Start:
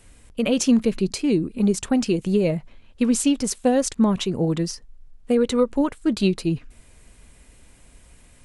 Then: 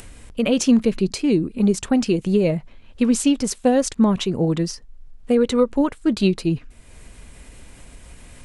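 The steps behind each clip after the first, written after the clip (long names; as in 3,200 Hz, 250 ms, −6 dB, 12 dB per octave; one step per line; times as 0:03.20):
high-shelf EQ 8,700 Hz −5.5 dB
upward compression, threshold −35 dBFS
level +2 dB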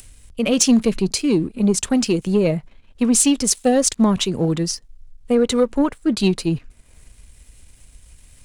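high-shelf EQ 4,000 Hz +8 dB
leveller curve on the samples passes 1
multiband upward and downward expander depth 40%
level −2.5 dB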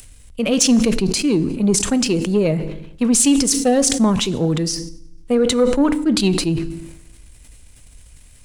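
feedback delay network reverb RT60 0.86 s, low-frequency decay 1.5×, high-frequency decay 0.95×, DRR 16 dB
level that may fall only so fast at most 51 dB per second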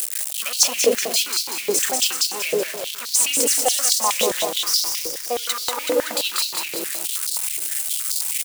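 spike at every zero crossing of −11.5 dBFS
on a send: repeating echo 189 ms, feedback 58%, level −3.5 dB
on the sum: high-pass on a step sequencer 9.5 Hz 490–4,400 Hz
level −6 dB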